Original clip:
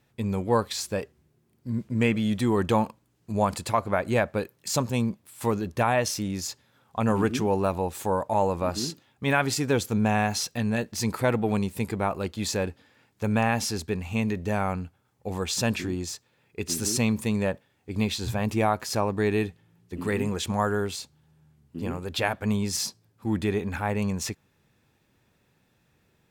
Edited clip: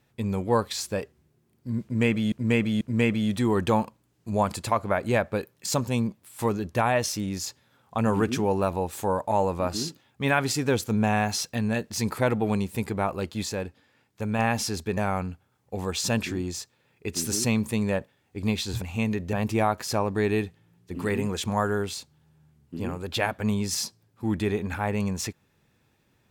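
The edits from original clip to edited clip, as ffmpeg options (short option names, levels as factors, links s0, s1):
-filter_complex "[0:a]asplit=8[s0][s1][s2][s3][s4][s5][s6][s7];[s0]atrim=end=2.322[s8];[s1]atrim=start=1.828:end=2.322[s9];[s2]atrim=start=1.828:end=12.452[s10];[s3]atrim=start=12.448:end=13.412,asetpts=PTS-STARTPTS,volume=0.668[s11];[s4]atrim=start=13.408:end=13.992[s12];[s5]atrim=start=14.498:end=18.352[s13];[s6]atrim=start=13.988:end=14.502[s14];[s7]atrim=start=18.348[s15];[s8][s9]acrossfade=d=0.004:c1=hsin:c2=hsin[s16];[s16][s10]acrossfade=d=0.004:c1=hsin:c2=hsin[s17];[s17][s11]acrossfade=d=0.004:c1=hsin:c2=hsin[s18];[s18][s12]acrossfade=d=0.004:c1=hsin:c2=hsin[s19];[s19][s13]acrossfade=d=0.004:c1=hsin:c2=hsin[s20];[s20][s14]acrossfade=d=0.004:c1=hsin:c2=hsin[s21];[s21][s15]acrossfade=d=0.004:c1=hsin:c2=hsin"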